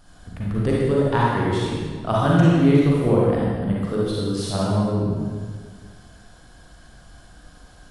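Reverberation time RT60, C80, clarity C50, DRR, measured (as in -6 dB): 1.8 s, -1.0 dB, -4.5 dB, -6.0 dB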